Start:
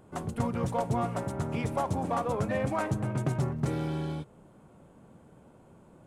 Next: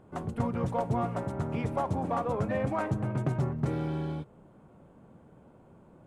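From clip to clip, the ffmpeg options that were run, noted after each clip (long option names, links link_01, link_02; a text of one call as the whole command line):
ffmpeg -i in.wav -af "highshelf=frequency=3900:gain=-11.5" out.wav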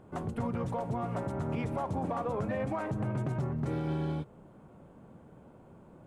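ffmpeg -i in.wav -af "alimiter=level_in=2dB:limit=-24dB:level=0:latency=1:release=90,volume=-2dB,volume=1.5dB" out.wav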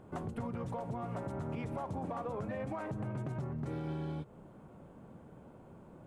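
ffmpeg -i in.wav -af "acompressor=threshold=-37dB:ratio=3" out.wav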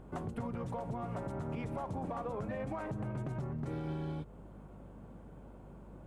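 ffmpeg -i in.wav -af "aeval=exprs='val(0)+0.00224*(sin(2*PI*50*n/s)+sin(2*PI*2*50*n/s)/2+sin(2*PI*3*50*n/s)/3+sin(2*PI*4*50*n/s)/4+sin(2*PI*5*50*n/s)/5)':channel_layout=same" out.wav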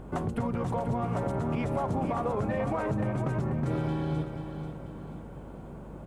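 ffmpeg -i in.wav -af "aecho=1:1:487|974|1461|1948|2435:0.376|0.162|0.0695|0.0299|0.0128,volume=8.5dB" out.wav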